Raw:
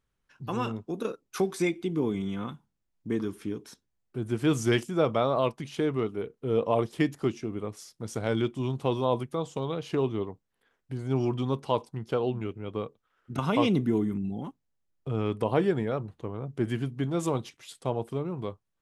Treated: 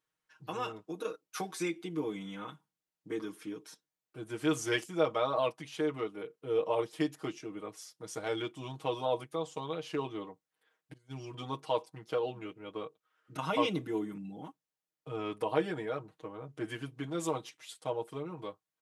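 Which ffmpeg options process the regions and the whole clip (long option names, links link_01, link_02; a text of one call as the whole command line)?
ffmpeg -i in.wav -filter_complex "[0:a]asettb=1/sr,asplit=3[link_01][link_02][link_03];[link_01]atrim=end=10.934[link_04];[link_02]atrim=start=10.93:end=11.34,asetpts=PTS-STARTPTS,afade=type=in:duration=0.004:curve=qsin,afade=type=out:start_time=0.406:duration=0.004:curve=qsin,agate=range=-18dB:threshold=-31dB:ratio=16:release=100:detection=peak,equalizer=frequency=670:width_type=o:width=2.3:gain=-13[link_05];[link_03]atrim=start=11.336[link_06];[link_04][link_05]acrossfade=duration=0.004:curve1=hsin:curve2=qsin[link_07];[link_07][link_06]acrossfade=duration=0.004:curve1=qsin:curve2=hsin,highpass=frequency=180:poles=1,lowshelf=frequency=310:gain=-9.5,aecho=1:1:6.4:0.99,volume=-5dB" out.wav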